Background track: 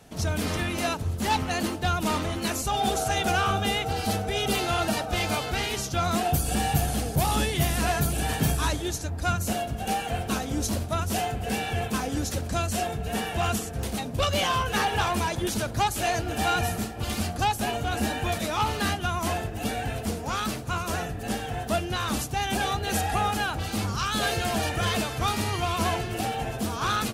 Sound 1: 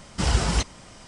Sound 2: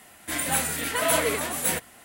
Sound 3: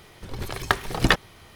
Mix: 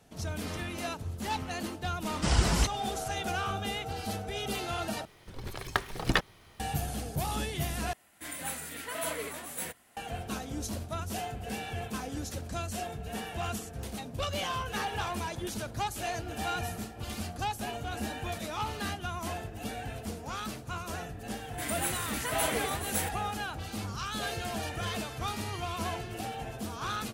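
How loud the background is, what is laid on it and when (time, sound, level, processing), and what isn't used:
background track -8.5 dB
2.04 add 1 -3.5 dB
5.05 replace with 3 -7.5 dB
7.93 replace with 2 -12 dB
21.3 add 2 -8 dB

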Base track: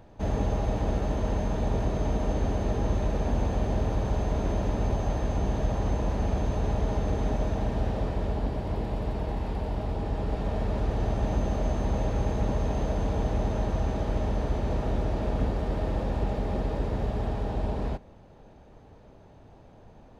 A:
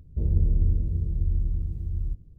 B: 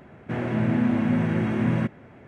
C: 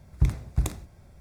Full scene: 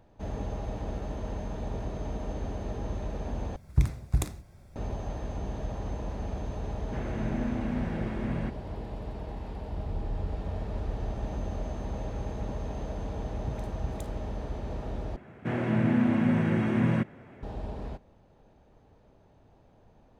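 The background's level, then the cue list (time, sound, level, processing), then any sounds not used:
base track -7.5 dB
3.56 replace with C -1 dB
6.63 add B -10 dB
9.54 add A -3.5 dB + spectral noise reduction 9 dB
13.26 add C -13 dB + dispersion highs, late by 85 ms, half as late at 780 Hz
15.16 replace with B -2 dB

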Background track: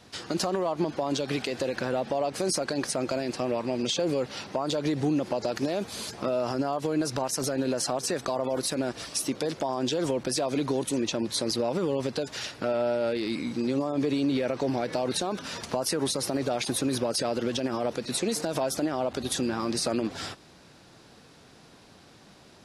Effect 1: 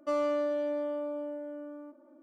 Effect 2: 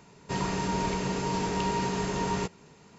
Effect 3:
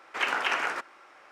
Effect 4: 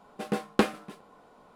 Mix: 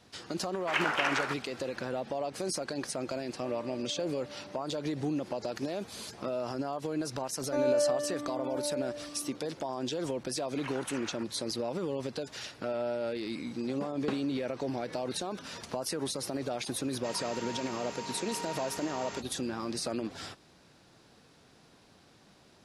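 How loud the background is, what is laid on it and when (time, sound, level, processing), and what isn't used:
background track -6.5 dB
0.53 add 3 -2 dB
3.36 add 1 -16 dB
7.45 add 1 -5 dB + moving spectral ripple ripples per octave 1.4, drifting +0.99 Hz, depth 21 dB
10.43 add 3 -16.5 dB
13.49 add 4 -13.5 dB + LPF 6300 Hz
16.74 add 2 -6 dB + HPF 1000 Hz 6 dB/oct

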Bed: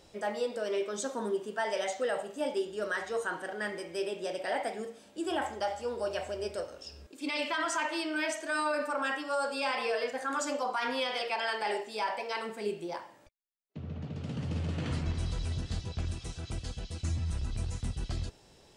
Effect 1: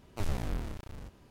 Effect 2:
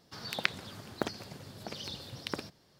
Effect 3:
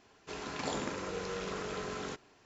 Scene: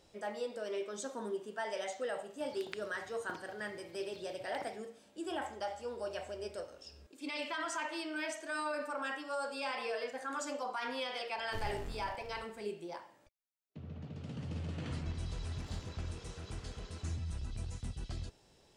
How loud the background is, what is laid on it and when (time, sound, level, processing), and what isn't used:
bed -6.5 dB
2.28 add 2 -16 dB
11.35 add 1 -9.5 dB
15.01 add 3 -11.5 dB + tube stage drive 37 dB, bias 0.8

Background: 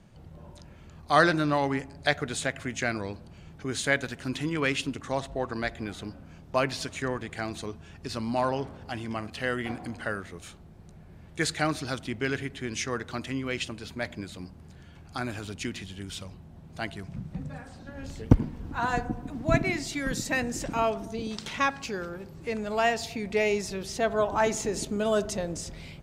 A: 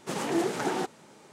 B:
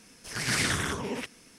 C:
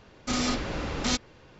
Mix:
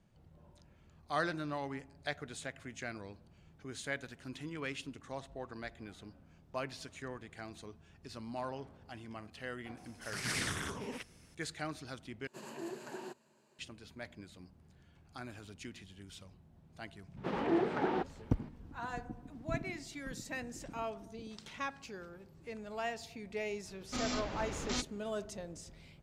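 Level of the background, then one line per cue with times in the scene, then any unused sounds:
background -13.5 dB
9.77 add B -9 dB
12.27 replace with A -17.5 dB + ripple EQ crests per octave 1.4, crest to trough 9 dB
17.17 add A -2.5 dB + air absorption 350 m
23.65 add C -9.5 dB

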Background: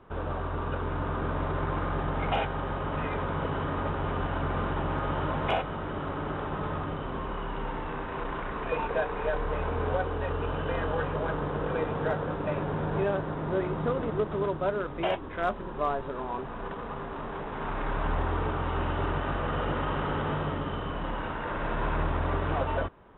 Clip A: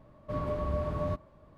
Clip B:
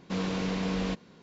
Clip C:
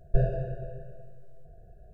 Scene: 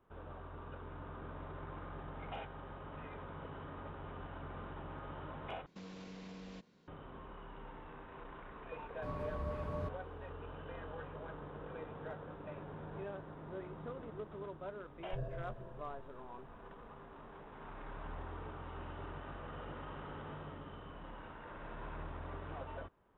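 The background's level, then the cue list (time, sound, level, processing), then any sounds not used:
background -17 dB
5.66 replace with B -13 dB + compressor, threshold -33 dBFS
8.73 add A -9 dB
14.99 add C -12.5 dB + limiter -19.5 dBFS

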